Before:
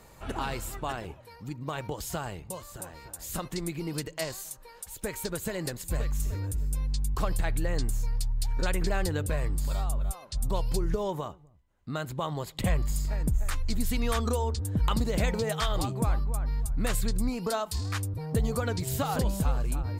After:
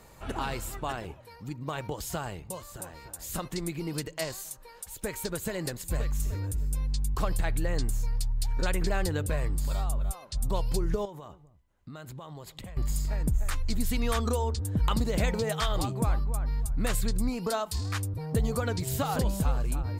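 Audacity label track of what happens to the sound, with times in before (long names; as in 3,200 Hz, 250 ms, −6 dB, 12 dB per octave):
11.050000	12.770000	downward compressor 10 to 1, threshold −39 dBFS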